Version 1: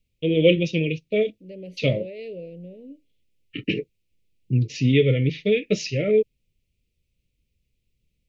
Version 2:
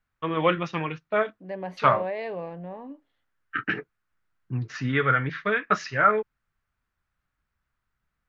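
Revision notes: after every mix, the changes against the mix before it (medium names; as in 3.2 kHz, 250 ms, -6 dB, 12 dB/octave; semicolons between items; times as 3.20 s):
first voice -9.0 dB; master: remove elliptic band-stop 510–2500 Hz, stop band 40 dB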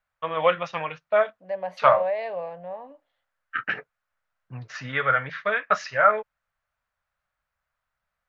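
master: add resonant low shelf 450 Hz -8 dB, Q 3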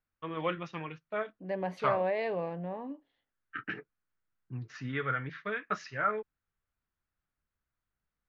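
first voice -10.5 dB; master: add resonant low shelf 450 Hz +8 dB, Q 3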